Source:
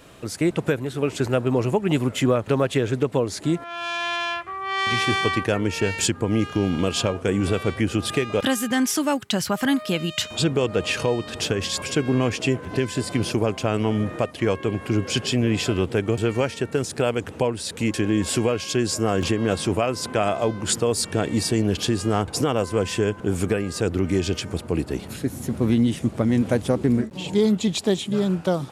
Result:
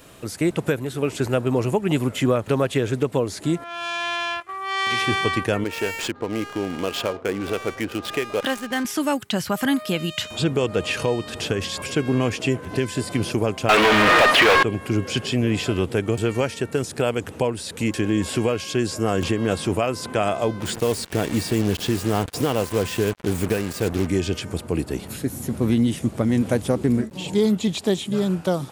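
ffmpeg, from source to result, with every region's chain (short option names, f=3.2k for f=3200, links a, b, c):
-filter_complex "[0:a]asettb=1/sr,asplit=3[a][b][c];[a]atrim=end=4.404[d];[b]atrim=start=4.4:end=5.02,asetpts=PTS-STARTPTS,afade=t=in:d=0.004:c=qsin,afade=t=out:st=0.616:d=0.004:c=qsin,agate=range=-9dB:threshold=-36dB:ratio=16:release=100:detection=peak,bass=f=250:g=-9,treble=f=4k:g=5[e];[c]atrim=start=5.016[f];[d][e]acrossfade=d=0.004:c1=hsin:c2=qsin[g];[g][f]acrossfade=d=0.004:c1=qsin:c2=hsin,asettb=1/sr,asplit=3[h][i][j];[h]atrim=end=5.644[k];[i]atrim=start=5.64:end=8.85,asetpts=PTS-STARTPTS,afade=t=in:d=0.004:c=qsin,afade=t=out:st=3.206:d=0.004:c=qsin,bass=f=250:g=-12,treble=f=4k:g=-1,adynamicsmooth=sensitivity=7:basefreq=650[l];[j]atrim=start=8.846[m];[k][l]acrossfade=d=0.004:c1=hsin:c2=qsin[n];[n][m]acrossfade=d=0.004:c1=qsin:c2=hsin,asettb=1/sr,asplit=3[o][p][q];[o]atrim=end=13.694[r];[p]atrim=start=13.69:end=14.63,asetpts=PTS-STARTPTS,afade=t=in:d=0.004:c=qsin,afade=t=out:st=0.936:d=0.004:c=qsin,asplit=2[s][t];[t]highpass=f=720:p=1,volume=40dB,asoftclip=type=tanh:threshold=-8dB[u];[s][u]amix=inputs=2:normalize=0,lowpass=f=3.4k:p=1,volume=-6dB,tiltshelf=f=690:g=-6.5[v];[q]atrim=start=14.626[w];[r][v]acrossfade=d=0.004:c1=hsin:c2=qsin[x];[x][w]acrossfade=d=0.004:c1=qsin:c2=hsin,asettb=1/sr,asplit=3[y][z][aa];[y]atrim=end=20.604[ab];[z]atrim=start=20.6:end=24.07,asetpts=PTS-STARTPTS,afade=t=in:d=0.004:c=qsin,afade=t=out:st=3.466:d=0.004:c=qsin,equalizer=f=1.3k:t=o:w=0.27:g=-4,acrusher=bits=4:mix=0:aa=0.5[ac];[aa]atrim=start=24.066[ad];[ab][ac]acrossfade=d=0.004:c1=hsin:c2=qsin[ae];[ae][ad]acrossfade=d=0.004:c1=qsin:c2=hsin,acrossover=split=3800[af][ag];[ag]acompressor=threshold=-36dB:ratio=4:attack=1:release=60[ah];[af][ah]amix=inputs=2:normalize=0,highshelf=f=9.4k:g=10.5"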